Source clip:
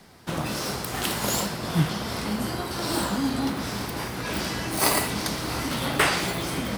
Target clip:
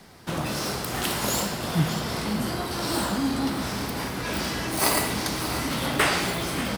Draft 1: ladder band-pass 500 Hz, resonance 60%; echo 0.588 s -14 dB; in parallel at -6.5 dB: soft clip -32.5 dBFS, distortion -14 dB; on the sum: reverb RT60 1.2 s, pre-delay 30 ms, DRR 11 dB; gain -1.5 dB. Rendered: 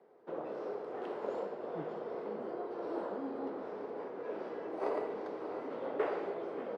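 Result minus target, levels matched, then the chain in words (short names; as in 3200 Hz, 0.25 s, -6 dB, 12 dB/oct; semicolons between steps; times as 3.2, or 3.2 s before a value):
500 Hz band +9.0 dB
echo 0.588 s -14 dB; in parallel at -6.5 dB: soft clip -32.5 dBFS, distortion -5 dB; on the sum: reverb RT60 1.2 s, pre-delay 30 ms, DRR 11 dB; gain -1.5 dB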